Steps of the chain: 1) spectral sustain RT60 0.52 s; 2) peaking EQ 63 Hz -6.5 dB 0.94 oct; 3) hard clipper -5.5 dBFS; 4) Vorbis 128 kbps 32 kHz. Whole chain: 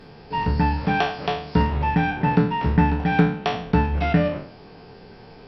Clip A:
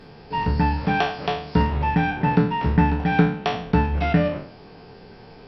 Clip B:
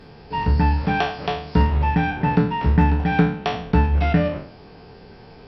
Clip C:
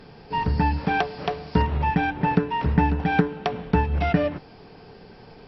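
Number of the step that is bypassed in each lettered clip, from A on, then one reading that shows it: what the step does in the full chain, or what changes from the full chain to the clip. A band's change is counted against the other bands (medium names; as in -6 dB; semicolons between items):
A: 3, crest factor change +2.0 dB; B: 2, 125 Hz band +2.5 dB; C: 1, 4 kHz band -2.0 dB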